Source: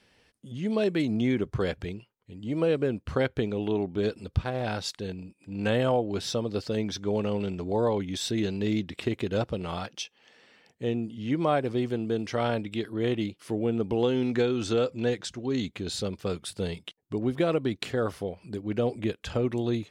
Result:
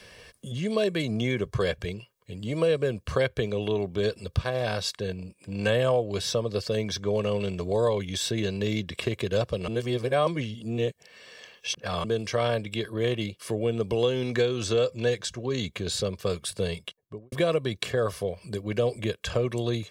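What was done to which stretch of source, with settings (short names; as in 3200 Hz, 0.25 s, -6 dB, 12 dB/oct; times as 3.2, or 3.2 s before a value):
9.68–12.04 reverse
16.76–17.32 studio fade out
whole clip: high shelf 3700 Hz +7 dB; comb 1.8 ms, depth 58%; three-band squash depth 40%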